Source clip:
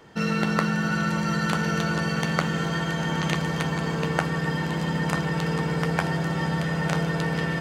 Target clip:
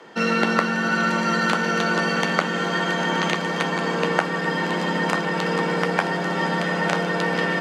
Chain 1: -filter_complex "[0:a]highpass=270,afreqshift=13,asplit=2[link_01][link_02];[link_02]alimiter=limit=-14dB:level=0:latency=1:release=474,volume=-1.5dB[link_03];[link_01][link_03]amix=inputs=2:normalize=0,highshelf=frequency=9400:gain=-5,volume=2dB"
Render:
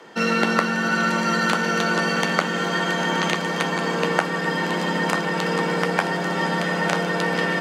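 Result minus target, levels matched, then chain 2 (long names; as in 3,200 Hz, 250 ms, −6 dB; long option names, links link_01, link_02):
8,000 Hz band +2.5 dB
-filter_complex "[0:a]highpass=270,afreqshift=13,asplit=2[link_01][link_02];[link_02]alimiter=limit=-14dB:level=0:latency=1:release=474,volume=-1.5dB[link_03];[link_01][link_03]amix=inputs=2:normalize=0,highshelf=frequency=9400:gain=-14.5,volume=2dB"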